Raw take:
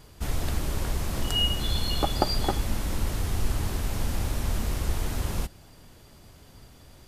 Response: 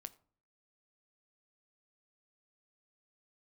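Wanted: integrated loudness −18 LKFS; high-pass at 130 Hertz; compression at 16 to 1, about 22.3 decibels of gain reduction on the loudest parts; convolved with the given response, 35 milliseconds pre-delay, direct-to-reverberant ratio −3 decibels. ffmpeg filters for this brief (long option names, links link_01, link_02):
-filter_complex "[0:a]highpass=130,acompressor=threshold=-43dB:ratio=16,asplit=2[link_01][link_02];[1:a]atrim=start_sample=2205,adelay=35[link_03];[link_02][link_03]afir=irnorm=-1:irlink=0,volume=8.5dB[link_04];[link_01][link_04]amix=inputs=2:normalize=0,volume=24dB"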